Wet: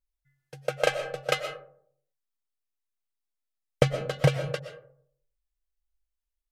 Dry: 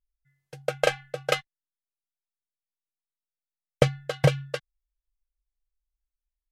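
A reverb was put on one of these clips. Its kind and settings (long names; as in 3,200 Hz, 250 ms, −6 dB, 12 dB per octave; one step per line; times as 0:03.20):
comb and all-pass reverb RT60 0.63 s, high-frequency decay 0.35×, pre-delay 80 ms, DRR 8.5 dB
level −1.5 dB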